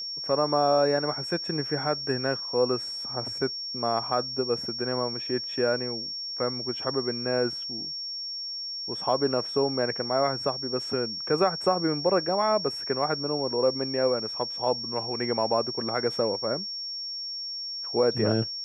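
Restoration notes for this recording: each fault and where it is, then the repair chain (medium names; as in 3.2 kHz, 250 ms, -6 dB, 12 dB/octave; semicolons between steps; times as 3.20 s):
whine 5.5 kHz -32 dBFS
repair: band-stop 5.5 kHz, Q 30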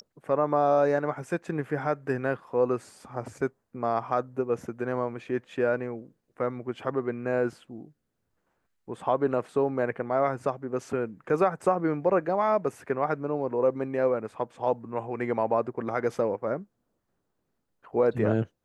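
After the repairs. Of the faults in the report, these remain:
nothing left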